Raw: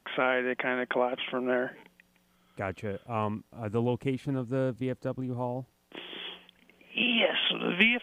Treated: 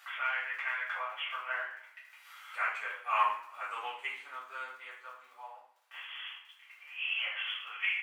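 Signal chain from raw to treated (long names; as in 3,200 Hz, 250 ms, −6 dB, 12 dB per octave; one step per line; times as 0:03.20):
source passing by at 0:03.20, 5 m/s, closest 3.1 metres
parametric band 2,100 Hz +6.5 dB 1 octave
transient designer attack −2 dB, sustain −8 dB
upward compression, threshold −43 dBFS
surface crackle 19 per second −49 dBFS
four-pole ladder high-pass 1,000 Hz, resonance 50%
coupled-rooms reverb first 0.5 s, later 1.6 s, from −24 dB, DRR −9.5 dB
level +3 dB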